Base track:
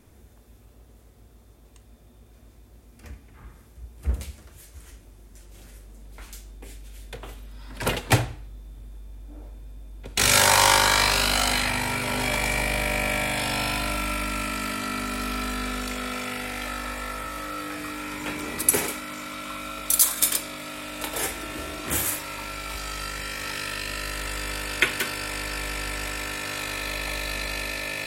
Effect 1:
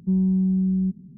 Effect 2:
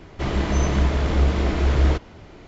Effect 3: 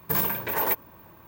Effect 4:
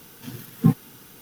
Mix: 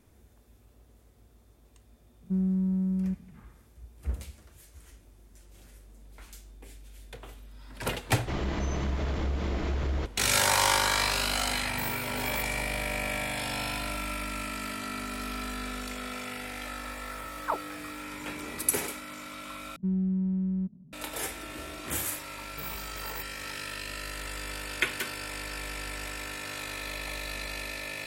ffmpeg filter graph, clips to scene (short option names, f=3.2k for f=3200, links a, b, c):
-filter_complex "[1:a]asplit=2[a][b];[3:a]asplit=2[c][d];[0:a]volume=-6.5dB[e];[a]adynamicsmooth=sensitivity=2.5:basefreq=550[f];[2:a]acompressor=threshold=-19dB:ratio=6:attack=3.2:release=140:knee=1:detection=peak[g];[4:a]aeval=exprs='val(0)*sin(2*PI*1100*n/s+1100*0.55/3.4*sin(2*PI*3.4*n/s))':c=same[h];[b]adynamicsmooth=sensitivity=8:basefreq=660[i];[e]asplit=2[j][k];[j]atrim=end=19.764[l];[i]atrim=end=1.17,asetpts=PTS-STARTPTS,volume=-7.5dB[m];[k]atrim=start=20.926[n];[f]atrim=end=1.17,asetpts=PTS-STARTPTS,volume=-6.5dB,afade=t=in:d=0.004:c=hsin,afade=t=out:st=1.166:d=0.004:c=hsin,adelay=2230[o];[g]atrim=end=2.47,asetpts=PTS-STARTPTS,volume=-6.5dB,afade=t=in:d=0.004:c=hsin,afade=t=out:st=2.466:d=0.004:c=hsin,adelay=8080[p];[c]atrim=end=1.27,asetpts=PTS-STARTPTS,volume=-12.5dB,afade=t=in:d=0.004:c=hsin,afade=t=out:st=1.266:d=0.004:c=hsin,adelay=11680[q];[h]atrim=end=1.21,asetpts=PTS-STARTPTS,volume=-11dB,afade=t=in:d=0.004:c=hsin,afade=t=out:st=1.206:d=0.004:c=hsin,adelay=742644S[r];[d]atrim=end=1.27,asetpts=PTS-STARTPTS,volume=-16dB,afade=t=in:d=0.004:c=hsin,afade=t=out:st=1.266:d=0.004:c=hsin,adelay=22480[s];[l][m]acrossfade=d=0.004:c1=hsin:c2=hsin[t];[t][n]acrossfade=d=0.004:c1=hsin:c2=hsin[u];[u][o][p][q][r][s]amix=inputs=6:normalize=0"